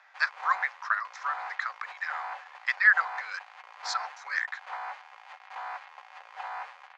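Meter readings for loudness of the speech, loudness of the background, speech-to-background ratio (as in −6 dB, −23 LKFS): −29.0 LKFS, −41.5 LKFS, 12.5 dB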